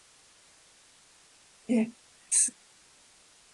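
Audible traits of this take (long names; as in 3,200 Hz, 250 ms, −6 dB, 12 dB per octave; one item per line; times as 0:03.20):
sample-and-hold tremolo
a quantiser's noise floor 10 bits, dither triangular
AAC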